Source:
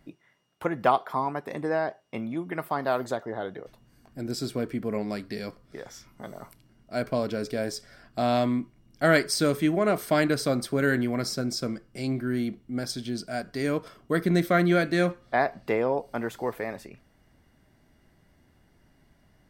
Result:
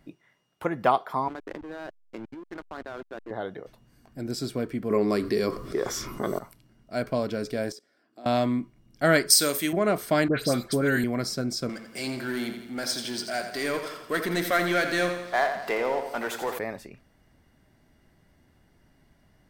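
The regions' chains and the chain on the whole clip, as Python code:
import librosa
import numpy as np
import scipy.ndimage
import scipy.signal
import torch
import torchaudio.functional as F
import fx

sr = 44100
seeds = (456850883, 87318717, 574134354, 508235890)

y = fx.chain(x, sr, fx.cabinet(low_hz=320.0, low_slope=12, high_hz=3700.0, hz=(320.0, 820.0, 1500.0), db=(10, -3, 10)),
    fx.level_steps(step_db=18),
    fx.backlash(play_db=-33.5), at=(1.28, 3.31))
y = fx.chain(y, sr, fx.high_shelf(hz=6100.0, db=5.0),
    fx.small_body(hz=(380.0, 1100.0), ring_ms=25, db=12),
    fx.env_flatten(amount_pct=50), at=(4.9, 6.39))
y = fx.chain(y, sr, fx.level_steps(step_db=23),
    fx.highpass_res(hz=310.0, q=2.8), at=(7.72, 8.26))
y = fx.chain(y, sr, fx.riaa(side='recording'),
    fx.room_flutter(wall_m=9.0, rt60_s=0.21), at=(9.3, 9.73))
y = fx.chain(y, sr, fx.high_shelf(hz=10000.0, db=6.0),
    fx.dispersion(late='highs', ms=99.0, hz=2100.0),
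    fx.band_squash(depth_pct=40), at=(10.28, 11.04))
y = fx.chain(y, sr, fx.highpass(hz=920.0, slope=6),
    fx.power_curve(exponent=0.7),
    fx.echo_feedback(ms=85, feedback_pct=53, wet_db=-8.5), at=(11.69, 16.59))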